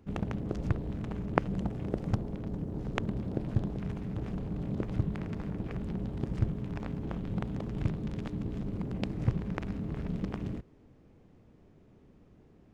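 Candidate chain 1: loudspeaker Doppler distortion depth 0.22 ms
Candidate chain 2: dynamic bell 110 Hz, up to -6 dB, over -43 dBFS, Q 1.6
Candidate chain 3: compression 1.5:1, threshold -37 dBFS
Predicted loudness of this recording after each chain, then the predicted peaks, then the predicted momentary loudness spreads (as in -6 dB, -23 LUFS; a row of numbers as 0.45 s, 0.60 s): -35.5 LUFS, -37.0 LUFS, -38.5 LUFS; -2.5 dBFS, -2.5 dBFS, -8.5 dBFS; 5 LU, 4 LU, 3 LU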